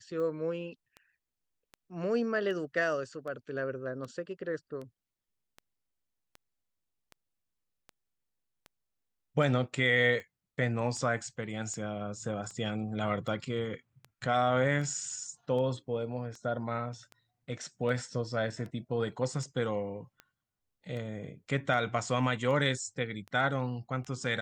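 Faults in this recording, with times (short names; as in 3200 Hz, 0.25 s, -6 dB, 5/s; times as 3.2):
tick 78 rpm -31 dBFS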